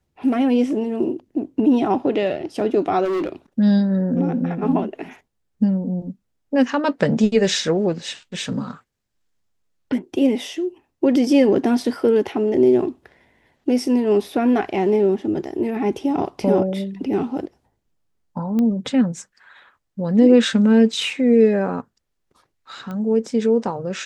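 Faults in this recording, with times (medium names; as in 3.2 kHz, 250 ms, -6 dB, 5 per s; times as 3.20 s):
3.04–3.29 s: clipped -19.5 dBFS
18.59 s: pop -13 dBFS
22.91 s: pop -20 dBFS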